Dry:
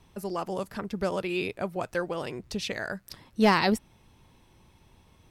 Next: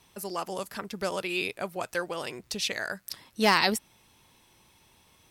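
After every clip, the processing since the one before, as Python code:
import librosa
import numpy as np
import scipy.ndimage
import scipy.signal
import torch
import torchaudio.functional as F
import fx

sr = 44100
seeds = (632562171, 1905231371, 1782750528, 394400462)

y = fx.tilt_eq(x, sr, slope=2.5)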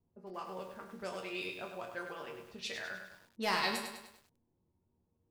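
y = fx.env_lowpass(x, sr, base_hz=360.0, full_db=-24.5)
y = fx.resonator_bank(y, sr, root=39, chord='minor', decay_s=0.3)
y = fx.echo_crushed(y, sr, ms=101, feedback_pct=55, bits=10, wet_db=-6.5)
y = y * 10.0 ** (1.0 / 20.0)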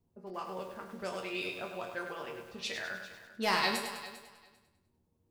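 y = fx.echo_feedback(x, sr, ms=397, feedback_pct=16, wet_db=-16.5)
y = y * 10.0 ** (3.0 / 20.0)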